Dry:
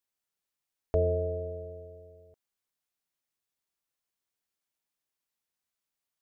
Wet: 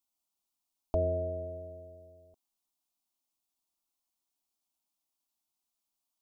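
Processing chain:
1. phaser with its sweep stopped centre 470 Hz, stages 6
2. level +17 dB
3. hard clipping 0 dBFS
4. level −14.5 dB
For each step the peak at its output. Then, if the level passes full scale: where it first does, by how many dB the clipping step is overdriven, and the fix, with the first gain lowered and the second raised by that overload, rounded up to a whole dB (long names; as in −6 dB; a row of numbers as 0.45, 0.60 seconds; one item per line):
−20.5, −3.5, −3.5, −18.0 dBFS
no step passes full scale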